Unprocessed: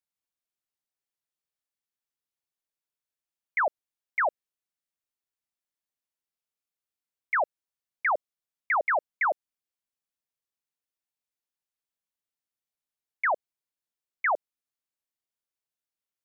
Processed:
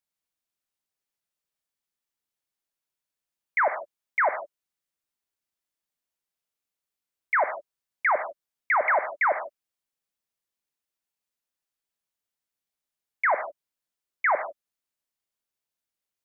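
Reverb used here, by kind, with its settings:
reverb whose tail is shaped and stops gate 180 ms flat, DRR 8.5 dB
level +2.5 dB

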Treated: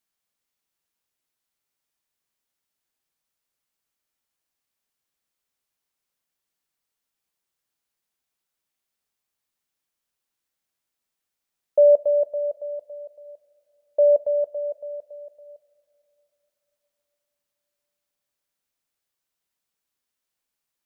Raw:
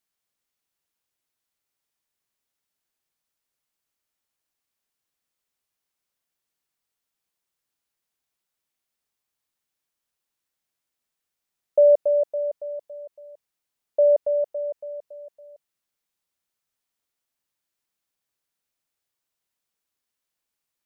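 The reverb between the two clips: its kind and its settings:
coupled-rooms reverb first 0.23 s, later 4 s, from −21 dB, DRR 14.5 dB

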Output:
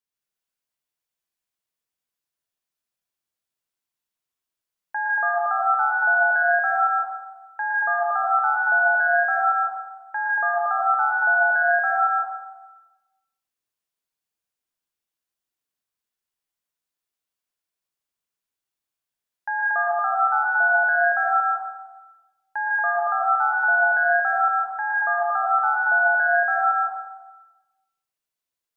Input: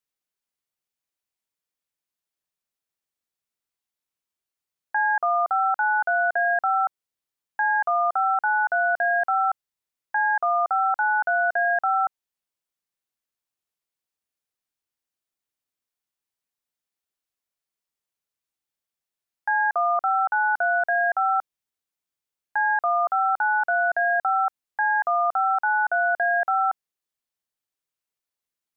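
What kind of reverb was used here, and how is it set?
dense smooth reverb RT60 1.1 s, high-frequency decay 0.9×, pre-delay 105 ms, DRR −3.5 dB
level −4 dB

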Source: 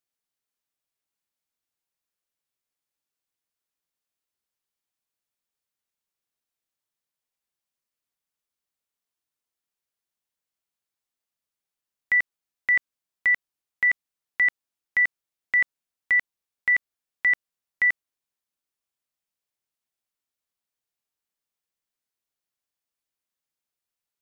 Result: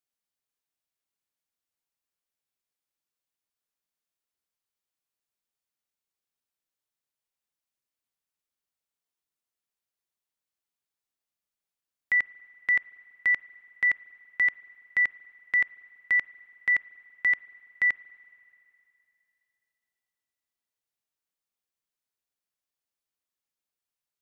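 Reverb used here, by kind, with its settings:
spring reverb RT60 2.8 s, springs 37/47 ms, chirp 50 ms, DRR 19.5 dB
level −3 dB

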